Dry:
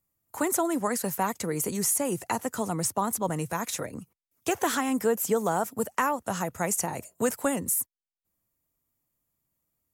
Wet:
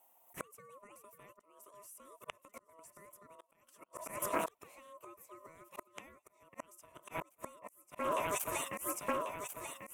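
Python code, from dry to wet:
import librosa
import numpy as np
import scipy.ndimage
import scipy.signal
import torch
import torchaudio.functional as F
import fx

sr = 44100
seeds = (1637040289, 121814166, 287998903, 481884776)

p1 = x + fx.echo_alternate(x, sr, ms=546, hz=1600.0, feedback_pct=64, wet_db=-10, dry=0)
p2 = fx.gate_flip(p1, sr, shuts_db=-21.0, range_db=-39)
p3 = fx.auto_swell(p2, sr, attack_ms=263.0)
p4 = fx.fixed_phaser(p3, sr, hz=1900.0, stages=4)
p5 = p4 * np.sin(2.0 * np.pi * 810.0 * np.arange(len(p4)) / sr)
p6 = fx.low_shelf(p5, sr, hz=120.0, db=7.0)
p7 = fx.notch(p6, sr, hz=6600.0, q=24.0)
p8 = fx.doppler_dist(p7, sr, depth_ms=0.15)
y = F.gain(torch.from_numpy(p8), 15.5).numpy()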